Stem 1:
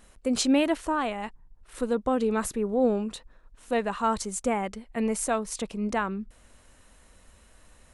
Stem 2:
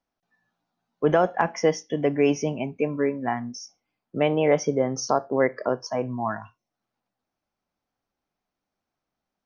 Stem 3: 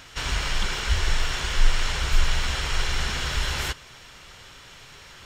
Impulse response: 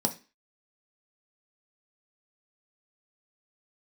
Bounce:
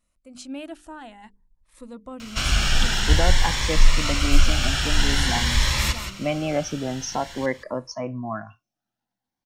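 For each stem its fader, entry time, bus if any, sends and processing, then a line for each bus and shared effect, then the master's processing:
-17.5 dB, 0.00 s, no send, no echo send, hum notches 50/100/150/200/250/300/350/400/450 Hz
-8.5 dB, 2.05 s, no send, no echo send, none
-2.0 dB, 2.20 s, no send, echo send -9.5 dB, none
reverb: none
echo: delay 175 ms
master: peaking EQ 430 Hz -13 dB 0.28 oct; level rider gain up to 8.5 dB; Shepard-style phaser rising 0.5 Hz

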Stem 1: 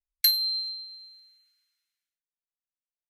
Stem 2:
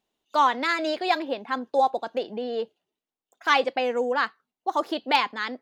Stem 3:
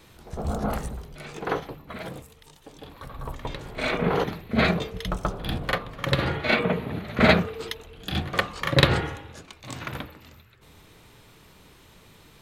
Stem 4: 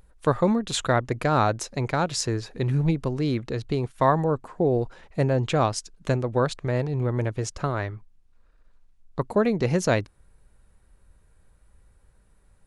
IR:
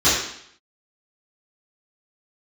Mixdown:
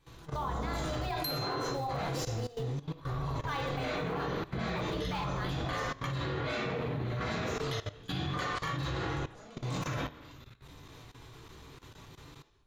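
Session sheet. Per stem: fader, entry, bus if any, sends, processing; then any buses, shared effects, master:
-8.5 dB, 1.00 s, no bus, no send, none
-12.0 dB, 0.00 s, no bus, send -21 dB, peaking EQ 720 Hz +2.5 dB 0.43 oct; companded quantiser 6-bit
-6.0 dB, 0.00 s, bus A, send -10.5 dB, saturation -17 dBFS, distortion -11 dB; flange 0.22 Hz, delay 5.9 ms, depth 2.7 ms, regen -61%
-14.0 dB, 0.00 s, bus A, send -12 dB, comb filter that takes the minimum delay 1.5 ms; compression 6:1, threshold -26 dBFS, peak gain reduction 9.5 dB; saturation -26.5 dBFS, distortion -14 dB
bus A: 0.0 dB, bass shelf 220 Hz +8.5 dB; compression 12:1, threshold -37 dBFS, peak gain reduction 13 dB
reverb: on, RT60 0.65 s, pre-delay 3 ms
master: peaking EQ 1 kHz +5.5 dB 0.3 oct; level held to a coarse grid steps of 17 dB

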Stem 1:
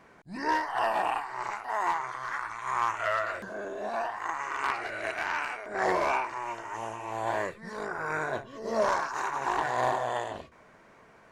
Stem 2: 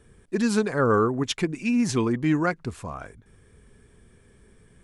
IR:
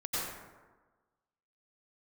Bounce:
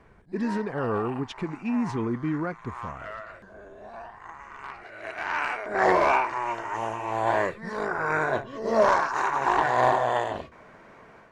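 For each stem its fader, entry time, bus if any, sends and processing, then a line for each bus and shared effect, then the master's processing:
-1.0 dB, 0.00 s, no send, treble shelf 5.4 kHz -6 dB; level rider gain up to 7.5 dB; auto duck -16 dB, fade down 0.65 s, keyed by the second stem
-3.5 dB, 0.00 s, no send, low-pass 1.6 kHz 6 dB/octave; peak limiter -16.5 dBFS, peak gain reduction 6 dB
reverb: none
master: treble shelf 5.4 kHz -4.5 dB

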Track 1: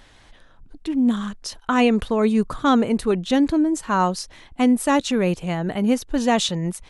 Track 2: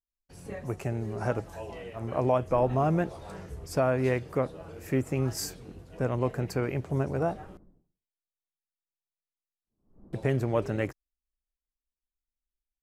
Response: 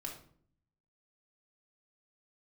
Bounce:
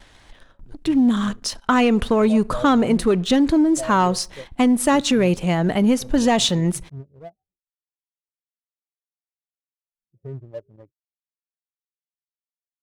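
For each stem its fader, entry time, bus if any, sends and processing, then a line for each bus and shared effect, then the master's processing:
+1.5 dB, 0.00 s, send -18.5 dB, gate with hold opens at -42 dBFS
-9.0 dB, 0.00 s, no send, spectral contrast expander 2.5:1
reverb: on, RT60 0.55 s, pre-delay 3 ms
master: waveshaping leveller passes 1; compression, threshold -13 dBFS, peak gain reduction 4.5 dB

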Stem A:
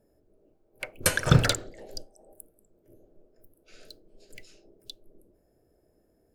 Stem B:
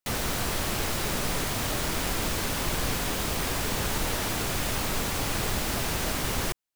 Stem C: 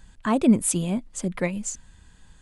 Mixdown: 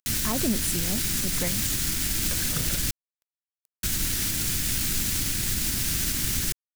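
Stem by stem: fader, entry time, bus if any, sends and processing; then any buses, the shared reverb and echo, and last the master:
-10.5 dB, 1.25 s, no send, upward compressor, threshold -35 dBFS
+0.5 dB, 0.00 s, muted 2.91–3.83 s, no send, tone controls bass +4 dB, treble +10 dB; upward compressor, threshold -29 dBFS; high-order bell 710 Hz -15.5 dB
-2.5 dB, 0.00 s, no send, none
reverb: none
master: crossover distortion -33 dBFS; peak limiter -14.5 dBFS, peak gain reduction 8 dB

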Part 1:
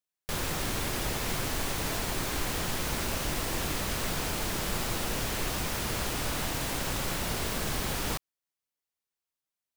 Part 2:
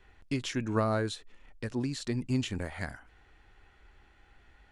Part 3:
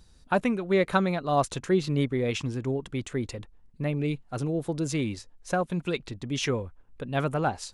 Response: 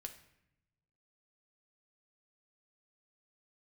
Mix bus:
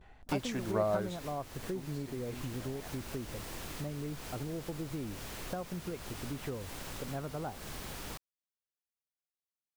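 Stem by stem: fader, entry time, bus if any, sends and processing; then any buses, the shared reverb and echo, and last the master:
-11.0 dB, 0.00 s, bus A, no send, none
-0.5 dB, 0.00 s, no bus, no send, peaking EQ 680 Hz +11.5 dB 0.66 oct; vibrato 0.72 Hz 84 cents; auto duck -18 dB, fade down 1.90 s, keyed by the third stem
-4.0 dB, 0.00 s, bus A, no send, low-pass 1.2 kHz
bus A: 0.0 dB, compression 5:1, threshold -36 dBFS, peak gain reduction 13 dB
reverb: none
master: none

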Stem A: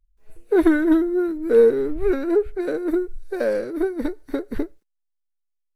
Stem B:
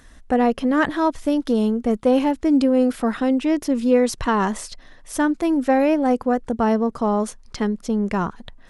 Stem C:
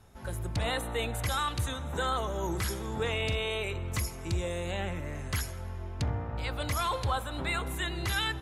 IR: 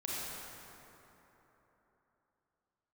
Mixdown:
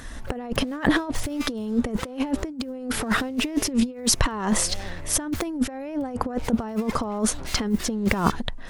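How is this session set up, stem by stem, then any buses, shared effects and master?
mute
+2.5 dB, 0.00 s, no send, none
-10.0 dB, 0.00 s, no send, self-modulated delay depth 0.39 ms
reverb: none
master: compressor with a negative ratio -23 dBFS, ratio -0.5

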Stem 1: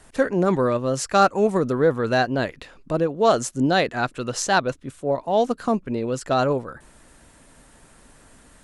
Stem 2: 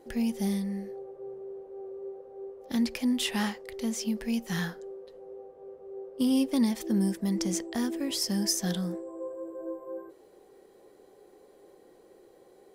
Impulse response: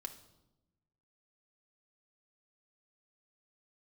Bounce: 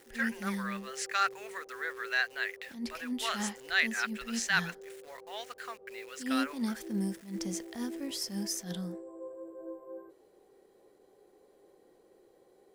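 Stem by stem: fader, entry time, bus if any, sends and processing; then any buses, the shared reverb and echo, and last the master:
-7.5 dB, 0.00 s, no send, resonant high-pass 1.9 kHz, resonance Q 3; treble shelf 5 kHz -3 dB; word length cut 8-bit, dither none
-6.0 dB, 0.00 s, no send, attacks held to a fixed rise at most 150 dB/s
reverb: none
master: none

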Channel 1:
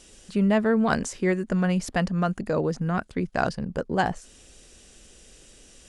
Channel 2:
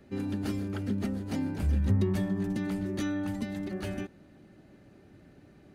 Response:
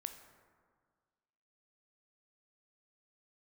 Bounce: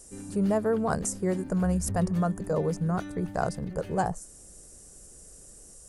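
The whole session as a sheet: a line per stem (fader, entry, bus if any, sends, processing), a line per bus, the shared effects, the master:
-0.5 dB, 0.00 s, no send, FFT filter 170 Hz 0 dB, 270 Hz -13 dB, 420 Hz -1 dB, 630 Hz -2 dB, 1.2 kHz -4 dB, 2.4 kHz -18 dB, 3.4 kHz -18 dB, 5.2 kHz -4 dB, 9 kHz +8 dB, 13 kHz +12 dB
-8.5 dB, 0.00 s, no send, none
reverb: none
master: none

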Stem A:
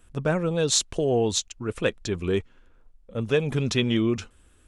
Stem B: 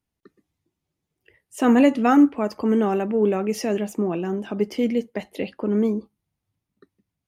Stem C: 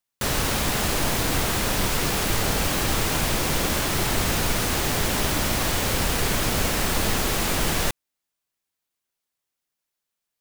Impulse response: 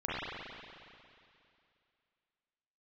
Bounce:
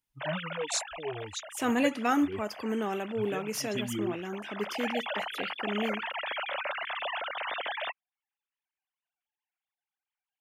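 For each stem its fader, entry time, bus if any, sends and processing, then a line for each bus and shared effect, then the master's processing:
-4.5 dB, 0.00 s, no send, expander on every frequency bin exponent 3; cancelling through-zero flanger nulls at 0.7 Hz, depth 6.9 ms
-7.5 dB, 0.00 s, no send, tilt shelf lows -5.5 dB
-12.5 dB, 0.00 s, no send, formants replaced by sine waves; peaking EQ 260 Hz +4 dB 0.58 oct; auto duck -14 dB, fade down 1.80 s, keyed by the first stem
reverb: none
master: treble shelf 7.1 kHz +4 dB

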